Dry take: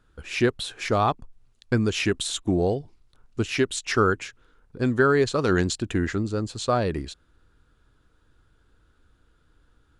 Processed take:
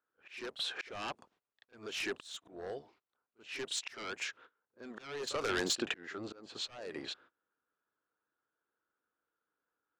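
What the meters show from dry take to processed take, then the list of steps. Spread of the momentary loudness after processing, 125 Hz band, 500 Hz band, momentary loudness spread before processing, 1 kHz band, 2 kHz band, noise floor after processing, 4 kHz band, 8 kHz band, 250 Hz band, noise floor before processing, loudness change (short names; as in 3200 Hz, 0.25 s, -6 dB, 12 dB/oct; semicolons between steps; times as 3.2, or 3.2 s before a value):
16 LU, -29.0 dB, -17.5 dB, 10 LU, -17.5 dB, -12.0 dB, under -85 dBFS, -6.5 dB, -9.0 dB, -20.0 dB, -64 dBFS, -14.5 dB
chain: octaver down 1 oct, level -4 dB; HPF 520 Hz 12 dB/oct; gate -57 dBFS, range -24 dB; low-pass opened by the level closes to 1900 Hz, open at -21 dBFS; sine folder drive 11 dB, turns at -10 dBFS; compressor 20:1, threshold -21 dBFS, peak gain reduction 10 dB; auto swell 0.61 s; pre-echo 35 ms -14 dB; gain -7.5 dB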